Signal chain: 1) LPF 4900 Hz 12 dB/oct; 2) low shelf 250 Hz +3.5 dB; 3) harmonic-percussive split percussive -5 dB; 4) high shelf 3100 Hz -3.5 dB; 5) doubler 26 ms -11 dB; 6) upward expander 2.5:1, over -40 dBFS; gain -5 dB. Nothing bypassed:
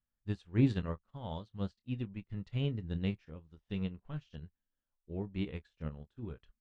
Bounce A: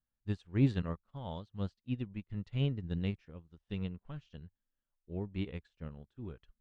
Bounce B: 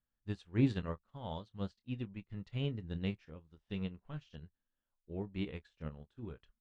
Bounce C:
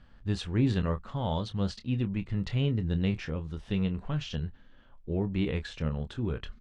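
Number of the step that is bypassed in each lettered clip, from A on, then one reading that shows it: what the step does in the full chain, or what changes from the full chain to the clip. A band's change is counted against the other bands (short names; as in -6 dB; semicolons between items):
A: 5, momentary loudness spread change +2 LU; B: 2, loudness change -2.5 LU; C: 6, crest factor change -5.5 dB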